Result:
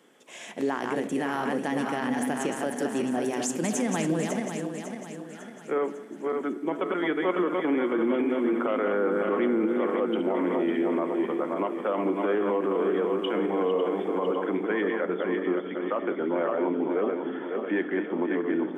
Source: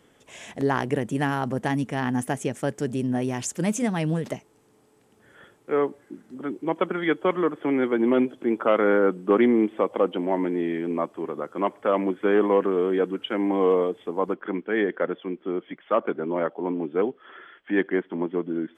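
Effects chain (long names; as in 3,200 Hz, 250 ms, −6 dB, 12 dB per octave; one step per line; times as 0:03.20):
feedback delay that plays each chunk backwards 275 ms, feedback 67%, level −6 dB
high-pass filter 200 Hz 24 dB per octave
brickwall limiter −18 dBFS, peak gain reduction 11 dB
on a send: convolution reverb RT60 1.2 s, pre-delay 6 ms, DRR 12 dB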